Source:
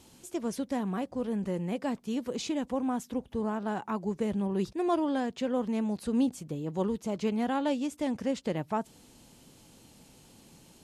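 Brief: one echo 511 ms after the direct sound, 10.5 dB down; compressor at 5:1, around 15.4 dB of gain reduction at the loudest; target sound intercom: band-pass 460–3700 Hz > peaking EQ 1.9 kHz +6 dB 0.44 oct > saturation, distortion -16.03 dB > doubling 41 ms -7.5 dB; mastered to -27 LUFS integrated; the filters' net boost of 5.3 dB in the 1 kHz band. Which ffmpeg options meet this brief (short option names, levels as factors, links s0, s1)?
-filter_complex "[0:a]equalizer=f=1000:t=o:g=7,acompressor=threshold=0.0112:ratio=5,highpass=460,lowpass=3700,equalizer=f=1900:t=o:w=0.44:g=6,aecho=1:1:511:0.299,asoftclip=threshold=0.0158,asplit=2[s0][s1];[s1]adelay=41,volume=0.422[s2];[s0][s2]amix=inputs=2:normalize=0,volume=10"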